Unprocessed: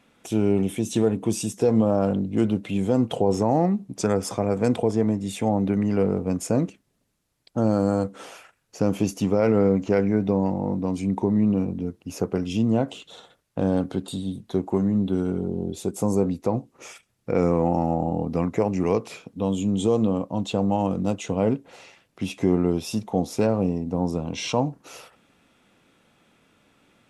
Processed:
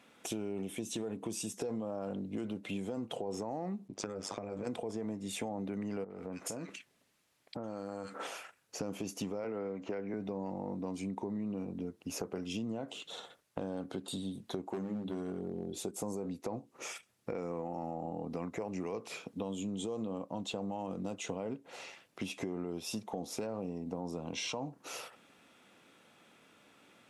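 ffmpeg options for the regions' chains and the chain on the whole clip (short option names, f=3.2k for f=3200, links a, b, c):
-filter_complex "[0:a]asettb=1/sr,asplit=3[a][b][c];[a]atrim=end=3.884[d];[b]atrim=start=3.88:end=4.67,asetpts=PTS-STARTPTS,afade=t=in:d=0.004:c=qsin,afade=t=out:st=0.786:d=0.004:c=qsin,lowpass=6.1k,acompressor=threshold=-26dB:ratio=2.5:attack=3.2:release=140:knee=1:detection=peak,tremolo=f=100:d=0.889[e];[c]atrim=start=4.666[f];[d][e]acrossfade=d=0.004:c1=hsin:c2=qsin[g];[g][f]acrossfade=d=0.004:c1=qsin:c2=hsin,asettb=1/sr,asplit=3[h][i][j];[h]atrim=end=6.044[k];[i]atrim=start=6.04:end=8.27,asetpts=PTS-STARTPTS,afade=t=in:d=0.004:c=qsin,afade=t=out:st=2.226:d=0.004:c=qsin,equalizer=f=1.9k:w=0.55:g=7.5,acrossover=split=1400[l][m];[m]adelay=60[n];[l][n]amix=inputs=2:normalize=0,atrim=end_sample=98343,acompressor=threshold=-33dB:ratio=6:attack=3.2:release=140:knee=1:detection=peak[o];[j]atrim=start=8.266[p];[k][o]acrossfade=d=0.004:c1=hsin:c2=qsin[q];[q][p]acrossfade=d=0.004:c1=qsin:c2=hsin,asettb=1/sr,asplit=3[r][s][t];[r]atrim=end=9.444[u];[s]atrim=start=9.44:end=10.14,asetpts=PTS-STARTPTS,afade=t=in:d=0.004:c=qsin,afade=t=out:st=0.696:d=0.004:c=qsin,bass=f=250:g=-6,treble=f=4k:g=-11,acrossover=split=350|1300[v][w][x];[v]acompressor=threshold=-26dB:ratio=4[y];[w]acompressor=threshold=-28dB:ratio=4[z];[x]acompressor=threshold=-40dB:ratio=4[aa];[y][z][aa]amix=inputs=3:normalize=0[ab];[t]atrim=start=10.136[ac];[u][ab]acrossfade=d=0.004:c1=hsin:c2=qsin[ad];[ad][ac]acrossfade=d=0.004:c1=qsin:c2=hsin,asettb=1/sr,asplit=3[ae][af][ag];[ae]atrim=end=14.704[ah];[af]atrim=start=14.7:end=15.78,asetpts=PTS-STARTPTS,afade=t=in:d=0.004:c=qsin,afade=t=out:st=1.076:d=0.004:c=qsin,volume=17.5dB,asoftclip=hard,volume=-17.5dB,bandreject=f=50:t=h:w=6,bandreject=f=100:t=h:w=6,bandreject=f=150:t=h:w=6,bandreject=f=200:t=h:w=6,bandreject=f=250:t=h:w=6,bandreject=f=300:t=h:w=6,bandreject=f=350:t=h:w=6[ai];[ag]atrim=start=15.776[aj];[ah][ai]acrossfade=d=0.004:c1=hsin:c2=qsin[ak];[ak][aj]acrossfade=d=0.004:c1=qsin:c2=hsin,highpass=f=280:p=1,alimiter=limit=-18dB:level=0:latency=1:release=27,acompressor=threshold=-36dB:ratio=5"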